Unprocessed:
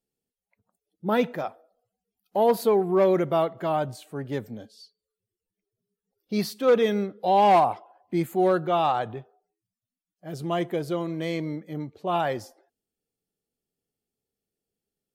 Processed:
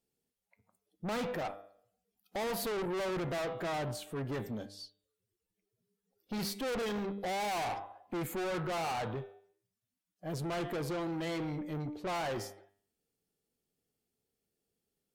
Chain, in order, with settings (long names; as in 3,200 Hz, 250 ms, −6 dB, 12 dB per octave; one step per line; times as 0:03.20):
hum removal 99.57 Hz, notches 39
asymmetric clip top −23 dBFS
tube saturation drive 36 dB, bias 0.3
level +2.5 dB